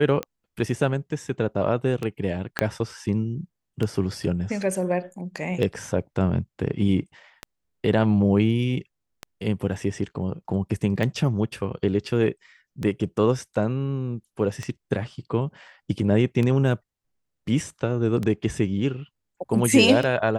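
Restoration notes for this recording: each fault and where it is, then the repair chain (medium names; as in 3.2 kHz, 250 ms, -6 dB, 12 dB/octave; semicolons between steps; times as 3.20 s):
tick 33 1/3 rpm -15 dBFS
2.59 s: pop -7 dBFS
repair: de-click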